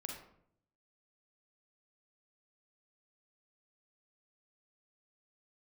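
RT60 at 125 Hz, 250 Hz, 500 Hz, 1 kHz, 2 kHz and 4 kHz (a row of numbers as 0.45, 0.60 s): 1.0, 0.90, 0.75, 0.60, 0.50, 0.40 s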